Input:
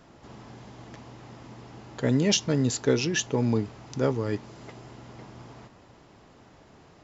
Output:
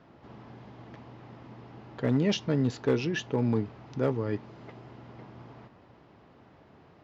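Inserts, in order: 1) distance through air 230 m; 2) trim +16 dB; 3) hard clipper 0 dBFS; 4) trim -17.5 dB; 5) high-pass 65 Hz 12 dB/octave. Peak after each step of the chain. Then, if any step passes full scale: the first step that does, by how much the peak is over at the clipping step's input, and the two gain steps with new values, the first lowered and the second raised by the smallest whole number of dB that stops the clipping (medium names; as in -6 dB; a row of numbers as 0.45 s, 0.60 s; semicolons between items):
-10.5 dBFS, +5.5 dBFS, 0.0 dBFS, -17.5 dBFS, -14.5 dBFS; step 2, 5.5 dB; step 2 +10 dB, step 4 -11.5 dB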